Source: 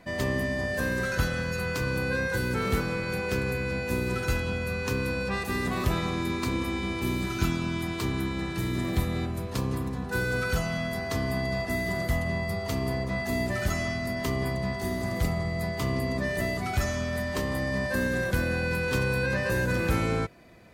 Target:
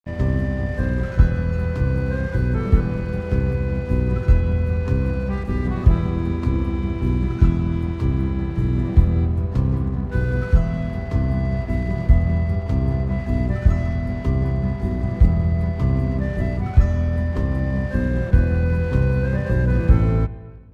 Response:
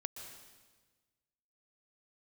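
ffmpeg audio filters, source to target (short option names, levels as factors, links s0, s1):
-filter_complex "[0:a]aemphasis=mode=reproduction:type=riaa,aeval=exprs='sgn(val(0))*max(abs(val(0))-0.0126,0)':c=same,asplit=2[s0][s1];[1:a]atrim=start_sample=2205,lowpass=2400[s2];[s1][s2]afir=irnorm=-1:irlink=0,volume=0.596[s3];[s0][s3]amix=inputs=2:normalize=0,volume=0.668"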